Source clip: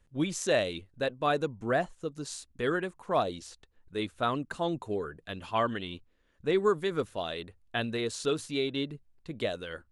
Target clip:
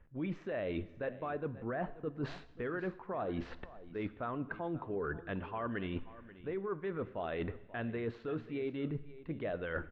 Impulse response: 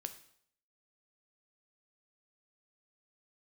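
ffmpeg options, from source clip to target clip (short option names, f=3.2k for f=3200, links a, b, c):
-filter_complex "[0:a]lowpass=f=2.2k:w=0.5412,lowpass=f=2.2k:w=1.3066,alimiter=level_in=2dB:limit=-24dB:level=0:latency=1:release=198,volume=-2dB,areverse,acompressor=threshold=-48dB:ratio=16,areverse,aecho=1:1:536:0.141,asplit=2[a][b];[1:a]atrim=start_sample=2205,asetrate=27783,aresample=44100[c];[b][c]afir=irnorm=-1:irlink=0,volume=-3dB[d];[a][d]amix=inputs=2:normalize=0,volume=9dB"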